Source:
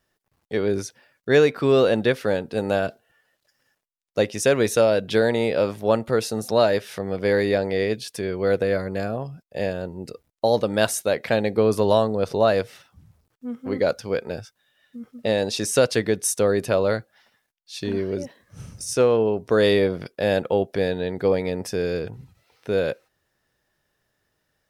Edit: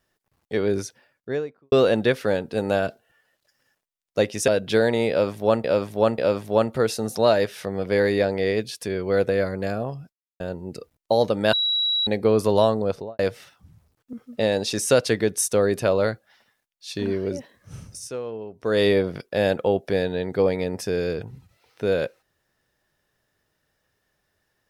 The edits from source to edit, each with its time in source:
0.79–1.72 studio fade out
4.48–4.89 cut
5.51–6.05 loop, 3 plays
9.46–9.73 mute
10.86–11.4 bleep 3890 Hz -19.5 dBFS
12.14–12.52 studio fade out
13.46–14.99 cut
18.65–19.74 dip -13.5 dB, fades 0.34 s

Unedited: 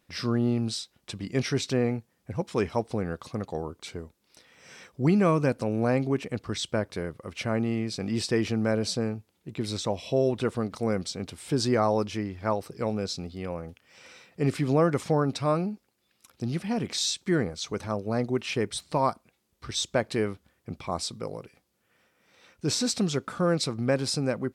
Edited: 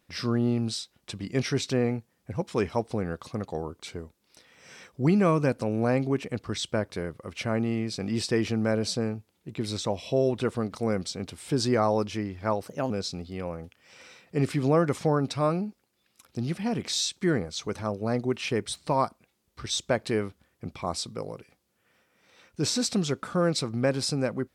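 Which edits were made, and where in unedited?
12.67–12.95 speed 121%

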